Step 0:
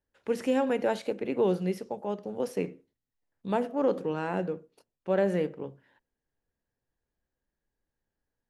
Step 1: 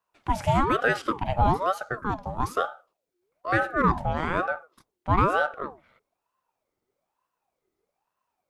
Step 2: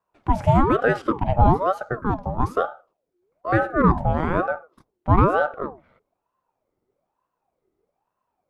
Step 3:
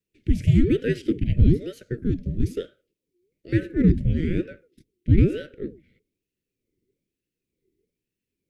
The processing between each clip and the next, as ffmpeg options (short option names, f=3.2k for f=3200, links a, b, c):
-af "aeval=exprs='val(0)*sin(2*PI*700*n/s+700*0.5/1.1*sin(2*PI*1.1*n/s))':c=same,volume=7dB"
-af "tiltshelf=f=1.5k:g=7.5"
-af "asuperstop=centerf=920:order=8:qfactor=0.56,volume=1.5dB"